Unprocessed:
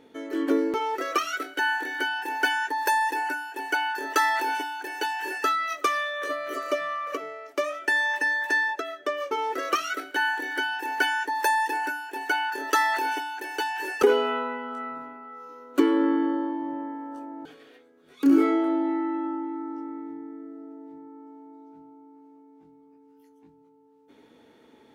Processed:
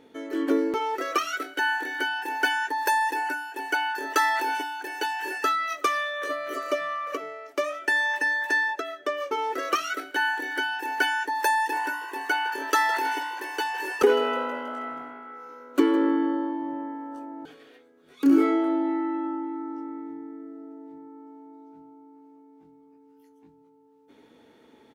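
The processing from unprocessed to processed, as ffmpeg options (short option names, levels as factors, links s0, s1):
-filter_complex "[0:a]asplit=3[s0][s1][s2];[s0]afade=t=out:st=11.71:d=0.02[s3];[s1]asplit=7[s4][s5][s6][s7][s8][s9][s10];[s5]adelay=160,afreqshift=55,volume=0.15[s11];[s6]adelay=320,afreqshift=110,volume=0.0944[s12];[s7]adelay=480,afreqshift=165,volume=0.0596[s13];[s8]adelay=640,afreqshift=220,volume=0.0376[s14];[s9]adelay=800,afreqshift=275,volume=0.0234[s15];[s10]adelay=960,afreqshift=330,volume=0.0148[s16];[s4][s11][s12][s13][s14][s15][s16]amix=inputs=7:normalize=0,afade=t=in:st=11.71:d=0.02,afade=t=out:st=16.09:d=0.02[s17];[s2]afade=t=in:st=16.09:d=0.02[s18];[s3][s17][s18]amix=inputs=3:normalize=0"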